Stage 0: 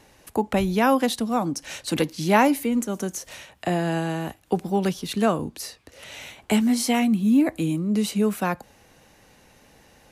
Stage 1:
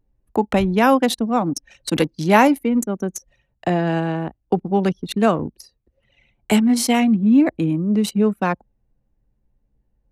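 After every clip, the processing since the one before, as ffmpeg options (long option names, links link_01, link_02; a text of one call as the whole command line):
ffmpeg -i in.wav -af "anlmdn=63.1,volume=4.5dB" out.wav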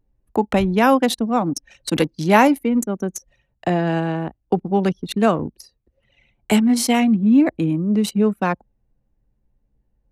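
ffmpeg -i in.wav -af anull out.wav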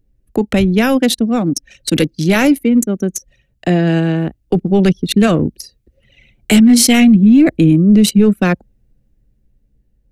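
ffmpeg -i in.wav -af "dynaudnorm=framelen=520:gausssize=7:maxgain=11.5dB,apsyclip=10dB,equalizer=frequency=940:width_type=o:width=0.99:gain=-14.5,volume=-2.5dB" out.wav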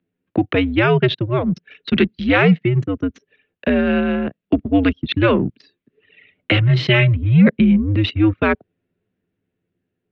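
ffmpeg -i in.wav -af "highpass=frequency=290:width_type=q:width=0.5412,highpass=frequency=290:width_type=q:width=1.307,lowpass=frequency=3500:width_type=q:width=0.5176,lowpass=frequency=3500:width_type=q:width=0.7071,lowpass=frequency=3500:width_type=q:width=1.932,afreqshift=-110,volume=1dB" out.wav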